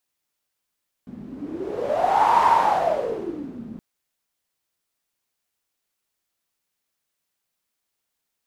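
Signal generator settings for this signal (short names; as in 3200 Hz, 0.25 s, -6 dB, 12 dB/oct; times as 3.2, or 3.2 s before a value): wind-like swept noise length 2.72 s, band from 220 Hz, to 940 Hz, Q 10, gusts 1, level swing 19 dB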